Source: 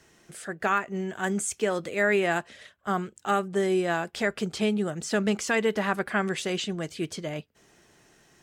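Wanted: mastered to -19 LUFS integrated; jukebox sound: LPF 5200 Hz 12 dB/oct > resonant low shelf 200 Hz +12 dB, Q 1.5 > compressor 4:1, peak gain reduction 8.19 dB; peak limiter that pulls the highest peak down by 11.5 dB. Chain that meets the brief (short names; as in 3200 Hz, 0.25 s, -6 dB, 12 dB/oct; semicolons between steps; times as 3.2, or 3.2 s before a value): limiter -23 dBFS; LPF 5200 Hz 12 dB/oct; resonant low shelf 200 Hz +12 dB, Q 1.5; compressor 4:1, threshold -31 dBFS; gain +16 dB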